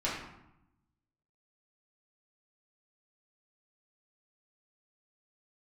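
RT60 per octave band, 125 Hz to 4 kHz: 1.3, 1.2, 0.80, 0.90, 0.70, 0.55 s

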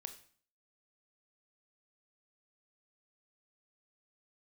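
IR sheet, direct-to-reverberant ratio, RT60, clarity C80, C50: 7.5 dB, 0.50 s, 15.5 dB, 11.5 dB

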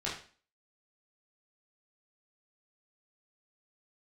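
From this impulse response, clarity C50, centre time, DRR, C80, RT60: 5.5 dB, 36 ms, -7.0 dB, 10.0 dB, 0.40 s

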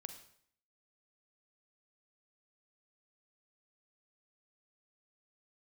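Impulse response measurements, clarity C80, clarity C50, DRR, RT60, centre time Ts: 11.5 dB, 9.0 dB, 7.5 dB, 0.60 s, 14 ms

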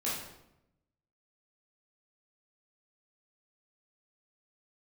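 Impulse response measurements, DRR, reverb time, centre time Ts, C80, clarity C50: -8.5 dB, 0.85 s, 58 ms, 5.0 dB, 1.0 dB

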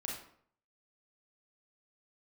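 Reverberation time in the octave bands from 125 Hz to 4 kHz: 0.70, 0.60, 0.60, 0.60, 0.50, 0.40 s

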